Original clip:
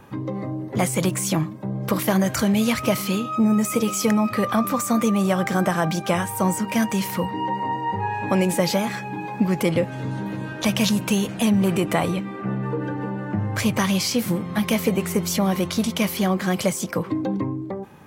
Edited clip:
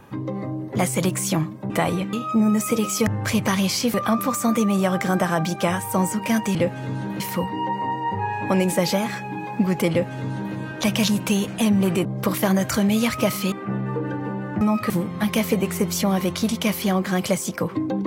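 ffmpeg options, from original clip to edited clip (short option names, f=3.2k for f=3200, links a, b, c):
-filter_complex "[0:a]asplit=11[a][b][c][d][e][f][g][h][i][j][k];[a]atrim=end=1.702[l];[b]atrim=start=11.858:end=12.292[m];[c]atrim=start=3.168:end=4.112[n];[d]atrim=start=13.378:end=14.252[o];[e]atrim=start=4.398:end=7.012[p];[f]atrim=start=9.708:end=10.362[q];[g]atrim=start=7.008:end=11.862[r];[h]atrim=start=1.698:end=3.172[s];[i]atrim=start=12.288:end=13.382[t];[j]atrim=start=4.108:end=4.402[u];[k]atrim=start=14.248[v];[l][m]acrossfade=d=0.004:c1=hsin:c2=hsin[w];[w][n]acrossfade=d=0.004:c1=hsin:c2=hsin[x];[x][o]acrossfade=d=0.004:c1=hsin:c2=hsin[y];[y][p]acrossfade=d=0.004:c1=hsin:c2=hsin[z];[z][q]acrossfade=d=0.004:c1=hsin:c2=hsin[aa];[aa][r]acrossfade=d=0.004:c1=hsin:c2=hsin[ab];[ab][s]acrossfade=d=0.004:c1=hsin:c2=hsin[ac];[ac][t]acrossfade=d=0.004:c1=hsin:c2=hsin[ad];[ad][u]acrossfade=d=0.004:c1=hsin:c2=hsin[ae];[ae][v]acrossfade=d=0.004:c1=hsin:c2=hsin"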